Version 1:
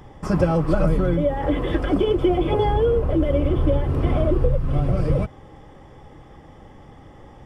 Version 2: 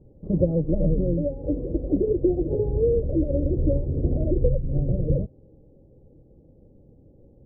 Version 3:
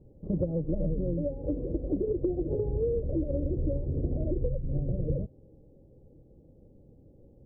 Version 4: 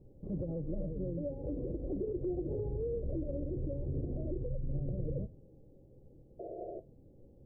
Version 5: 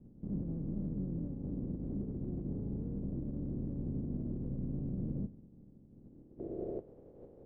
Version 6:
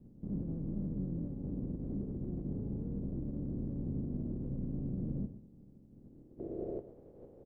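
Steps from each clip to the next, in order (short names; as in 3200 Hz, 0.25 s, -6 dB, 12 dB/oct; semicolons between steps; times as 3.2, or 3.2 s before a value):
Chebyshev low-pass 540 Hz, order 4; upward expander 1.5:1, over -28 dBFS
compressor 3:1, threshold -23 dBFS, peak gain reduction 7 dB; gain -3 dB
limiter -26 dBFS, peak gain reduction 10 dB; painted sound noise, 6.39–6.8, 320–720 Hz -40 dBFS; on a send at -15.5 dB: reverb RT60 0.25 s, pre-delay 3 ms; on the sum: gain -3 dB
spectral contrast lowered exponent 0.29; limiter -29.5 dBFS, peak gain reduction 7.5 dB; low-pass sweep 220 Hz -> 470 Hz, 5.9–6.9; gain +2 dB
echo 0.117 s -14.5 dB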